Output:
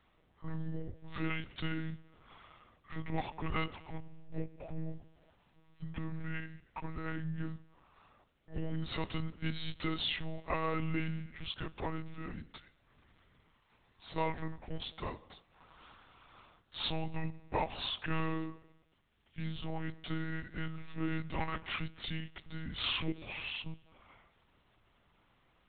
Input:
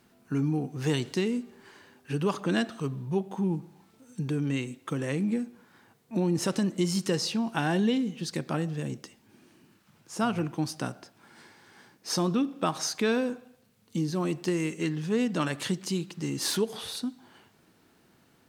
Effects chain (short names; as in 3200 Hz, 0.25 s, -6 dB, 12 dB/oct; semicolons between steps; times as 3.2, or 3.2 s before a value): varispeed -28%; low shelf 480 Hz -9 dB; monotone LPC vocoder at 8 kHz 160 Hz; gain -2 dB